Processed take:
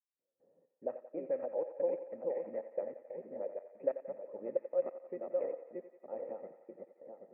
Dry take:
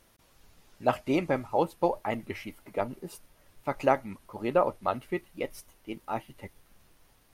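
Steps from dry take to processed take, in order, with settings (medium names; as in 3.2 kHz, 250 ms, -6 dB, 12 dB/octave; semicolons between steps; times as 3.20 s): backward echo that repeats 390 ms, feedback 53%, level -2.5 dB; high-pass 180 Hz 24 dB/octave; gate with hold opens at -52 dBFS; level-controlled noise filter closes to 1.1 kHz, open at -25.5 dBFS; compression 2.5:1, threshold -37 dBFS, peak gain reduction 14.5 dB; trance gate "..xxxxxx..xx" 184 bpm -60 dB; cascade formant filter e; on a send: thinning echo 89 ms, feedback 81%, high-pass 520 Hz, level -9.5 dB; on the sum: level-controlled noise filter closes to 650 Hz, open at -23 dBFS; trim +8 dB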